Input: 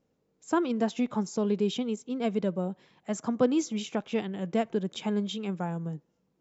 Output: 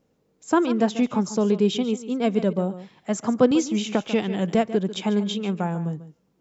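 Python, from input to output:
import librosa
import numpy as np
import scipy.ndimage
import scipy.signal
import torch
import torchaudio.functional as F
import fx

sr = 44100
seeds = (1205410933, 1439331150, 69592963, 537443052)

y = x + 10.0 ** (-14.0 / 20.0) * np.pad(x, (int(143 * sr / 1000.0), 0))[:len(x)]
y = fx.band_squash(y, sr, depth_pct=70, at=(3.51, 4.55))
y = y * 10.0 ** (6.5 / 20.0)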